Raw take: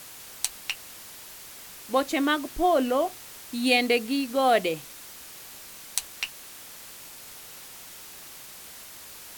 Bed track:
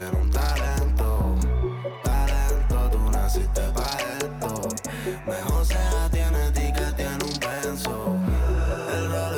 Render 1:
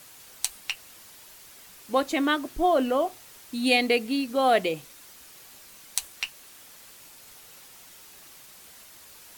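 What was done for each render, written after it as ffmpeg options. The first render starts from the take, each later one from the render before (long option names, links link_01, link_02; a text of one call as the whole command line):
ffmpeg -i in.wav -af "afftdn=noise_reduction=6:noise_floor=-45" out.wav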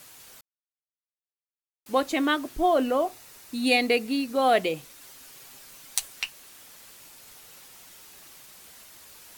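ffmpeg -i in.wav -filter_complex "[0:a]asettb=1/sr,asplit=3[link_01][link_02][link_03];[link_01]atrim=end=2.804[link_04];[link_02]atrim=start=2.8:end=4.42,asetpts=PTS-STARTPTS,afade=type=in:duration=0.004:curve=qsin,afade=type=out:start_time=1.616:duration=0.004:curve=qsin,bandreject=frequency=3200:width=13[link_05];[link_03]atrim=start=4.416[link_06];[link_04][link_05]acrossfade=duration=0.004:curve1=hsin:curve2=qsin[link_07];[link_07][link_06]acrossfade=duration=0.004:curve1=qsin:curve2=hsin,asettb=1/sr,asplit=3[link_08][link_09][link_10];[link_08]atrim=end=5.004[link_11];[link_09]atrim=start=5:end=6.21,asetpts=PTS-STARTPTS,afade=type=in:duration=0.004:curve=qsin,afade=type=out:start_time=1.206:duration=0.004:curve=qsin,aecho=1:1:7.4:0.54,atrim=end_sample=53361[link_12];[link_10]atrim=start=6.206[link_13];[link_11][link_12]acrossfade=duration=0.004:curve1=hsin:curve2=qsin[link_14];[link_14][link_13]acrossfade=duration=0.004:curve1=qsin:curve2=hsin,asplit=3[link_15][link_16][link_17];[link_15]atrim=end=0.41,asetpts=PTS-STARTPTS,afade=type=out:start_time=0.406:duration=0.004:curve=hsin[link_18];[link_16]atrim=start=0.41:end=1.86,asetpts=PTS-STARTPTS,volume=0[link_19];[link_17]atrim=start=1.86,asetpts=PTS-STARTPTS,afade=type=in:duration=0.004:curve=hsin[link_20];[link_18][link_19][link_20]concat=n=3:v=0:a=1" out.wav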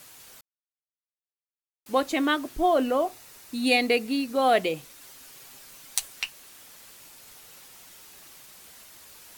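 ffmpeg -i in.wav -af anull out.wav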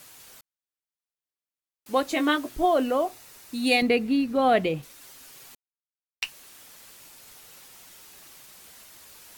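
ffmpeg -i in.wav -filter_complex "[0:a]asettb=1/sr,asplit=3[link_01][link_02][link_03];[link_01]atrim=end=2.074[link_04];[link_02]atrim=start=2.07:end=2.65,asetpts=PTS-STARTPTS,afade=type=in:duration=0.004:curve=qsin,afade=type=out:start_time=0.576:duration=0.004:curve=qsin,asplit=2[link_05][link_06];[link_06]adelay=17,volume=-7dB[link_07];[link_05][link_07]amix=inputs=2:normalize=0,atrim=end_sample=25578[link_08];[link_03]atrim=start=2.646[link_09];[link_04][link_08]acrossfade=duration=0.004:curve1=hsin:curve2=qsin[link_10];[link_10][link_09]acrossfade=duration=0.004:curve1=qsin:curve2=hsin,asettb=1/sr,asplit=3[link_11][link_12][link_13];[link_11]atrim=end=3.824[link_14];[link_12]atrim=start=3.82:end=4.83,asetpts=PTS-STARTPTS,afade=type=in:duration=0.004:curve=qsin,afade=type=out:start_time=1.006:duration=0.004:curve=qsin,bass=frequency=250:gain=10,treble=frequency=4000:gain=-9[link_15];[link_13]atrim=start=4.826[link_16];[link_14][link_15]acrossfade=duration=0.004:curve1=hsin:curve2=qsin[link_17];[link_17][link_16]acrossfade=duration=0.004:curve1=qsin:curve2=hsin,asplit=3[link_18][link_19][link_20];[link_18]atrim=end=5.55,asetpts=PTS-STARTPTS,afade=type=out:start_time=5.546:duration=0.004:curve=hsin[link_21];[link_19]atrim=start=5.55:end=6.22,asetpts=PTS-STARTPTS,volume=0[link_22];[link_20]atrim=start=6.22,asetpts=PTS-STARTPTS,afade=type=in:duration=0.004:curve=hsin[link_23];[link_21][link_22][link_23]concat=n=3:v=0:a=1" out.wav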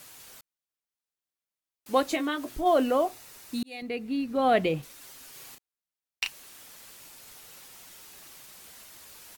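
ffmpeg -i in.wav -filter_complex "[0:a]asplit=3[link_01][link_02][link_03];[link_01]afade=type=out:start_time=2.15:duration=0.02[link_04];[link_02]acompressor=threshold=-31dB:ratio=2:attack=3.2:release=140:knee=1:detection=peak,afade=type=in:start_time=2.15:duration=0.02,afade=type=out:start_time=2.65:duration=0.02[link_05];[link_03]afade=type=in:start_time=2.65:duration=0.02[link_06];[link_04][link_05][link_06]amix=inputs=3:normalize=0,asplit=3[link_07][link_08][link_09];[link_07]afade=type=out:start_time=5.33:duration=0.02[link_10];[link_08]asplit=2[link_11][link_12];[link_12]adelay=34,volume=-4dB[link_13];[link_11][link_13]amix=inputs=2:normalize=0,afade=type=in:start_time=5.33:duration=0.02,afade=type=out:start_time=6.26:duration=0.02[link_14];[link_09]afade=type=in:start_time=6.26:duration=0.02[link_15];[link_10][link_14][link_15]amix=inputs=3:normalize=0,asplit=2[link_16][link_17];[link_16]atrim=end=3.63,asetpts=PTS-STARTPTS,afade=type=out:start_time=3.626:duration=0.004:curve=hsin[link_18];[link_17]atrim=start=3.63,asetpts=PTS-STARTPTS,afade=type=in:duration=1.1[link_19];[link_18][link_19]concat=n=2:v=0:a=1" out.wav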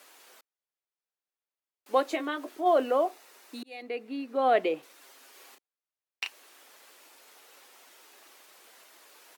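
ffmpeg -i in.wav -af "highpass=frequency=320:width=0.5412,highpass=frequency=320:width=1.3066,highshelf=frequency=3600:gain=-10" out.wav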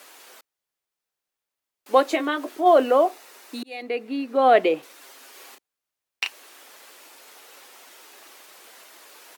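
ffmpeg -i in.wav -af "volume=7.5dB" out.wav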